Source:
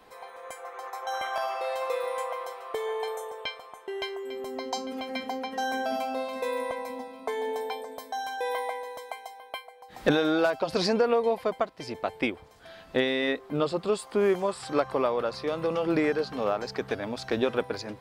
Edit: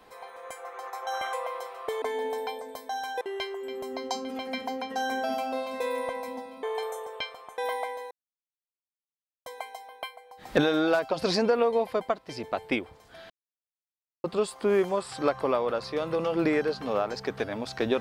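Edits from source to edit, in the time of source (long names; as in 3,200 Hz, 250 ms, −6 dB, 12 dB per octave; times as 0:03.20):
0:01.33–0:02.19: remove
0:02.88–0:03.83: swap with 0:07.25–0:08.44
0:08.97: splice in silence 1.35 s
0:12.81–0:13.75: silence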